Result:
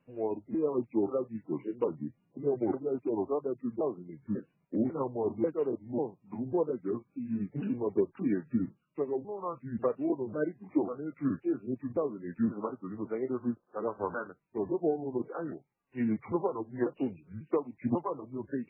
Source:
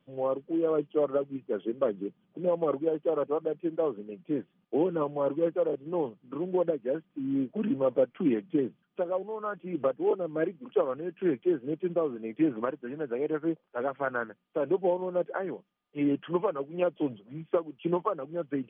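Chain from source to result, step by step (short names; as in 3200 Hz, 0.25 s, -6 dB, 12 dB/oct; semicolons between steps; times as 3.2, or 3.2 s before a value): repeated pitch sweeps -7 st, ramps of 0.544 s; gain -1.5 dB; MP3 8 kbps 11025 Hz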